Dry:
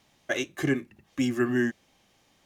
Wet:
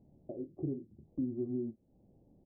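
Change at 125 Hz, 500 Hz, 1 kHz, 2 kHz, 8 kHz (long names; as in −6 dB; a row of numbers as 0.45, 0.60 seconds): −8.5 dB, −11.0 dB, below −20 dB, below −40 dB, below −35 dB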